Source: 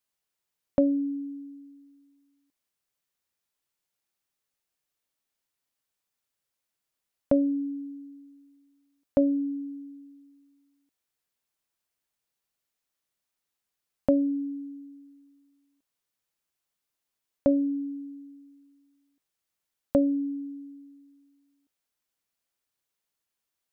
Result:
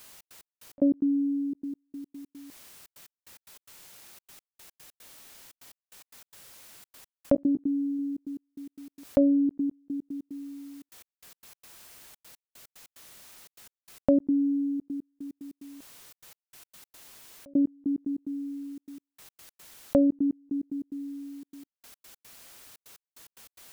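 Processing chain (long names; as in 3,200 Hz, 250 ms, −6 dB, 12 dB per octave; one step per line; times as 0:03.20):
gate pattern "xx.x..x.x.xxx" 147 BPM −60 dB
0:07.34–0:07.99: double-tracking delay 16 ms −13 dB
envelope flattener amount 50%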